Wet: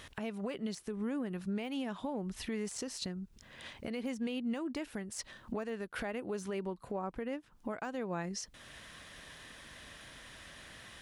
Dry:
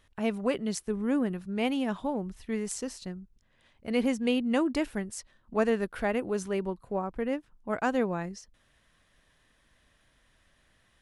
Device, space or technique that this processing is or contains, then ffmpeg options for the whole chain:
broadcast voice chain: -af "highpass=frequency=91:poles=1,deesser=0.95,acompressor=threshold=-45dB:ratio=4,equalizer=frequency=4100:width_type=o:width=2.4:gain=3,alimiter=level_in=19dB:limit=-24dB:level=0:latency=1:release=376,volume=-19dB,volume=14.5dB"

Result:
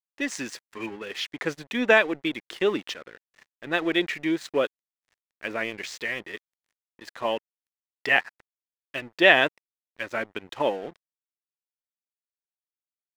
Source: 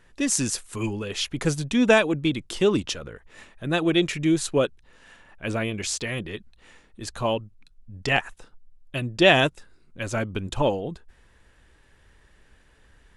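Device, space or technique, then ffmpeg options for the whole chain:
pocket radio on a weak battery: -af "highpass=320,lowpass=4100,aeval=exprs='sgn(val(0))*max(abs(val(0))-0.00596,0)':channel_layout=same,equalizer=frequency=1900:width_type=o:width=0.46:gain=8,volume=-1dB"

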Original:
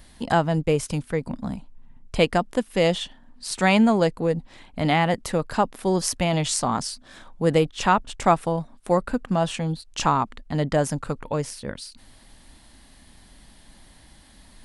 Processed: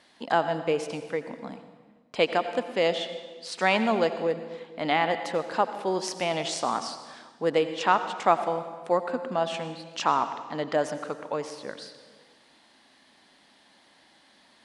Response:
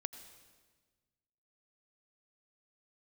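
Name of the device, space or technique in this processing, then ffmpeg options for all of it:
supermarket ceiling speaker: -filter_complex "[0:a]highpass=350,lowpass=5200[link_01];[1:a]atrim=start_sample=2205[link_02];[link_01][link_02]afir=irnorm=-1:irlink=0"

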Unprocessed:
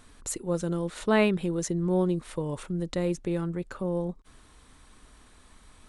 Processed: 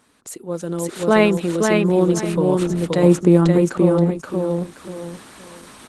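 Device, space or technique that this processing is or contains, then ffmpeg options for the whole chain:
video call: -filter_complex "[0:a]asettb=1/sr,asplit=3[link_01][link_02][link_03];[link_01]atrim=end=3.034[link_04];[link_02]atrim=start=3.03:end=3.58,asetpts=PTS-STARTPTS,afade=type=in:duration=0.004:curve=qsin,afade=type=out:start_time=0.546:duration=0.004:curve=qsin,equalizer=frequency=125:width_type=o:width=1:gain=7,equalizer=frequency=250:width_type=o:width=1:gain=8,equalizer=frequency=1000:width_type=o:width=1:gain=7,equalizer=frequency=2000:width_type=o:width=1:gain=-4,equalizer=frequency=4000:width_type=o:width=1:gain=-4,equalizer=frequency=8000:width_type=o:width=1:gain=5[link_05];[link_03]atrim=start=3.576[link_06];[link_04][link_05]acrossfade=duration=0.004:curve1=hsin:curve2=qsin[link_07];[link_07][link_06]acrossfade=duration=0.004:curve1=qsin:curve2=hsin,highpass=170,aecho=1:1:526|1052|1578:0.668|0.154|0.0354,dynaudnorm=framelen=280:gausssize=5:maxgain=16dB" -ar 48000 -c:a libopus -b:a 16k

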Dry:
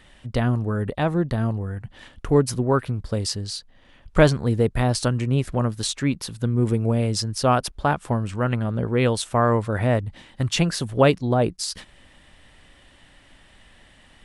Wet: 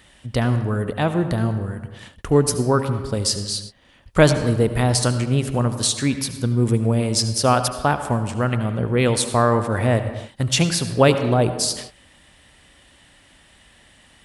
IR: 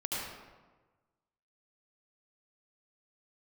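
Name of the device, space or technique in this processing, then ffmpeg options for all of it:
keyed gated reverb: -filter_complex "[0:a]highpass=42,asplit=3[link_01][link_02][link_03];[1:a]atrim=start_sample=2205[link_04];[link_02][link_04]afir=irnorm=-1:irlink=0[link_05];[link_03]apad=whole_len=628051[link_06];[link_05][link_06]sidechaingate=range=-33dB:threshold=-45dB:ratio=16:detection=peak,volume=-11.5dB[link_07];[link_01][link_07]amix=inputs=2:normalize=0,highshelf=frequency=5600:gain=9"

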